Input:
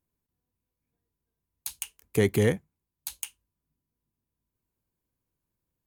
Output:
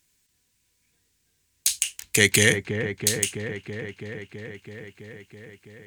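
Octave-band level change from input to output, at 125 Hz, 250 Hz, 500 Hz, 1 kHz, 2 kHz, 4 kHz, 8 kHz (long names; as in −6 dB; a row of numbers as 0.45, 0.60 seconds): +2.0, +2.0, +1.5, +3.0, +15.0, +16.5, +16.0 decibels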